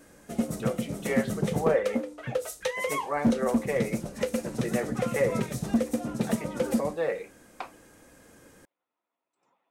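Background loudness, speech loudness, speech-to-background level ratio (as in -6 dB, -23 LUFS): -30.5 LUFS, -32.0 LUFS, -1.5 dB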